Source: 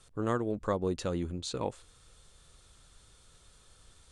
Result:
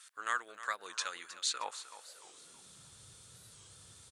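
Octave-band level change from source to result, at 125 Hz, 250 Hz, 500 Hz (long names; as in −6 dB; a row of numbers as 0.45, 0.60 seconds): −24.0, −28.0, −18.5 decibels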